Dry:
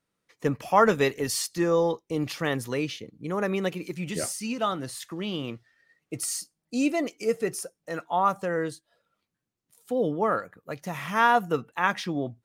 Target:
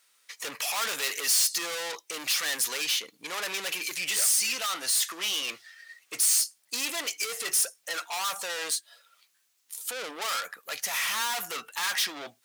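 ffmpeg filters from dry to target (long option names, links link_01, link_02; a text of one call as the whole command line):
ffmpeg -i in.wav -filter_complex "[0:a]asplit=2[link_01][link_02];[link_02]highpass=frequency=720:poles=1,volume=36dB,asoftclip=type=tanh:threshold=-7.5dB[link_03];[link_01][link_03]amix=inputs=2:normalize=0,lowpass=frequency=3700:poles=1,volume=-6dB,aderivative,volume=-2dB" out.wav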